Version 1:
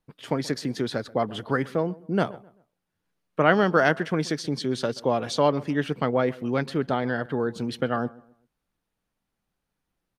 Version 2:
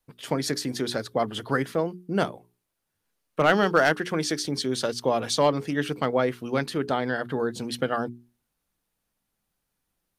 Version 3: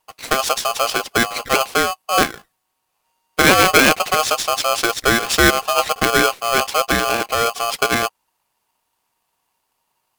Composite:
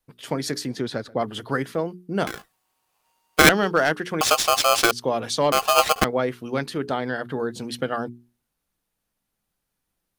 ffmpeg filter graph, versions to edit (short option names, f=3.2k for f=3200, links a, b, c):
-filter_complex "[2:a]asplit=3[a][b][c];[1:a]asplit=5[d][e][f][g][h];[d]atrim=end=0.672[i];[0:a]atrim=start=0.668:end=1.212[j];[e]atrim=start=1.208:end=2.272[k];[a]atrim=start=2.268:end=3.492[l];[f]atrim=start=3.488:end=4.212[m];[b]atrim=start=4.208:end=4.912[n];[g]atrim=start=4.908:end=5.522[o];[c]atrim=start=5.518:end=6.042[p];[h]atrim=start=6.038[q];[i][j]acrossfade=d=0.004:c1=hsin:c2=hsin[r];[r][k]acrossfade=d=0.004:c1=hsin:c2=hsin[s];[s][l]acrossfade=d=0.004:c1=hsin:c2=hsin[t];[t][m]acrossfade=d=0.004:c1=hsin:c2=hsin[u];[u][n]acrossfade=d=0.004:c1=hsin:c2=hsin[v];[v][o]acrossfade=d=0.004:c1=hsin:c2=hsin[w];[w][p]acrossfade=d=0.004:c1=hsin:c2=hsin[x];[x][q]acrossfade=d=0.004:c1=hsin:c2=hsin"